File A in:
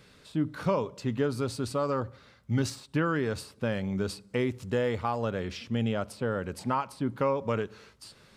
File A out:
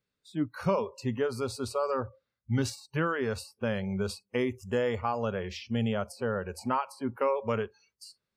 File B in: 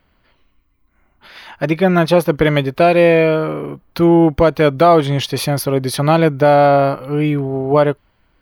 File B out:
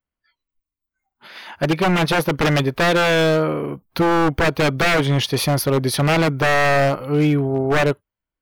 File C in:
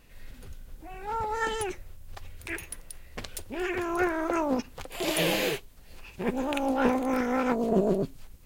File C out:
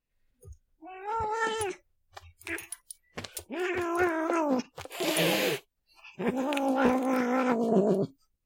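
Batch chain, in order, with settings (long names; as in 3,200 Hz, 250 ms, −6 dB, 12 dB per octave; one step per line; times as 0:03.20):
noise reduction from a noise print of the clip's start 29 dB
wave folding −11 dBFS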